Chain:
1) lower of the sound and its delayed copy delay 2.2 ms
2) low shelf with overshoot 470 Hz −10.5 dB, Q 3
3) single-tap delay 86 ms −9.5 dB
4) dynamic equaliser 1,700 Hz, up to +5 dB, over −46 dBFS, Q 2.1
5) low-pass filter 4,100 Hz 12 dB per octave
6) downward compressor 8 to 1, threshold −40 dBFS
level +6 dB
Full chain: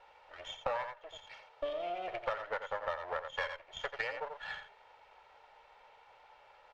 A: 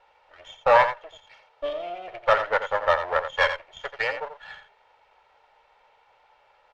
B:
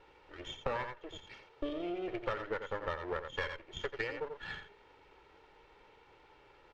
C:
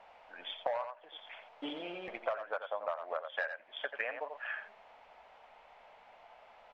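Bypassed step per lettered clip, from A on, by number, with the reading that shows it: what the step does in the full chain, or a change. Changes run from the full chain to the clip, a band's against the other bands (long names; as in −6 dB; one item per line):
6, change in momentary loudness spread +6 LU
2, 250 Hz band +15.0 dB
1, 250 Hz band +8.5 dB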